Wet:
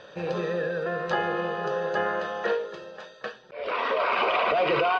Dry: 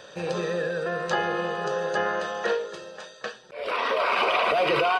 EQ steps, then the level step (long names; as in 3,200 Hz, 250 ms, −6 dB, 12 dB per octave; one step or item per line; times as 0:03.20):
high-frequency loss of the air 170 metres
0.0 dB